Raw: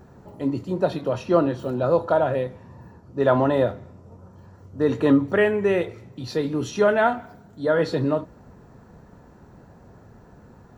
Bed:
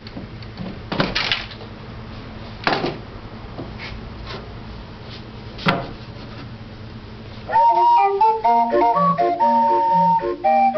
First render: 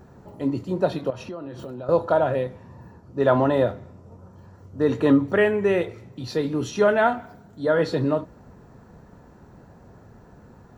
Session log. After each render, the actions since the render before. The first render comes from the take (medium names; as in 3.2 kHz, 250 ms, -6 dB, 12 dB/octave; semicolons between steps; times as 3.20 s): 1.10–1.89 s: compression 10:1, threshold -31 dBFS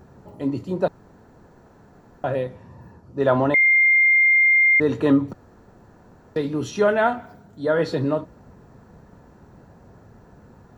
0.88–2.24 s: room tone; 3.54–4.80 s: bleep 2.11 kHz -12.5 dBFS; 5.33–6.36 s: room tone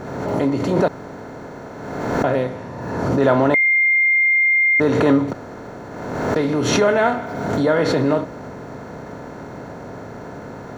spectral levelling over time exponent 0.6; swell ahead of each attack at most 36 dB/s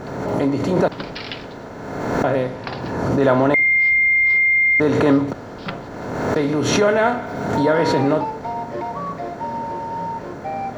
add bed -11.5 dB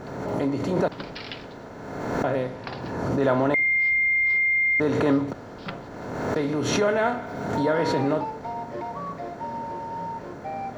trim -6 dB